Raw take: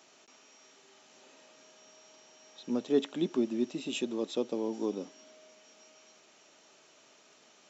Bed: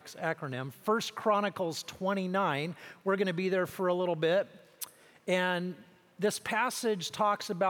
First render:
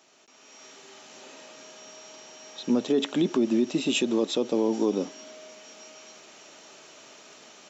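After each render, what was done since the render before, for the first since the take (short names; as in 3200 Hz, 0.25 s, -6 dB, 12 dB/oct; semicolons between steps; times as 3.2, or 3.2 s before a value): limiter -26 dBFS, peak gain reduction 10 dB; AGC gain up to 11 dB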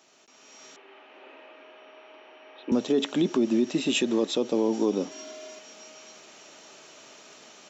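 0.76–2.72 Chebyshev band-pass 300–2700 Hz, order 3; 3.65–4.28 bell 1800 Hz +6 dB 0.31 oct; 5.11–5.59 comb 2.9 ms, depth 96%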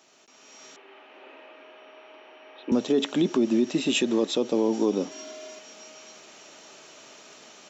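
gain +1 dB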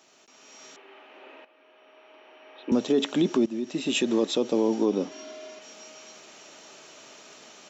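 1.45–2.72 fade in, from -13 dB; 3.46–4.09 fade in, from -13.5 dB; 4.74–5.62 air absorption 78 m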